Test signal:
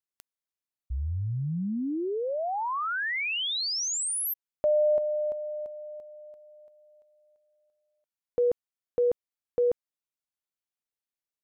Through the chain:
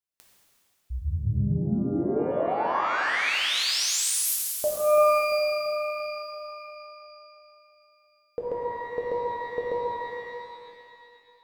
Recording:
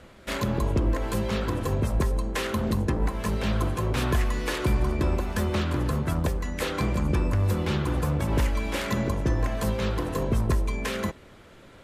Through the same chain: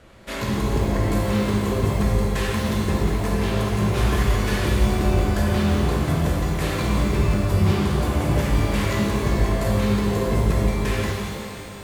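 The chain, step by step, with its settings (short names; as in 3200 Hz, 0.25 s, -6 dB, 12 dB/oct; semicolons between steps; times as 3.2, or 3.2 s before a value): shimmer reverb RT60 2.5 s, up +12 st, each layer -8 dB, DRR -4 dB; gain -2 dB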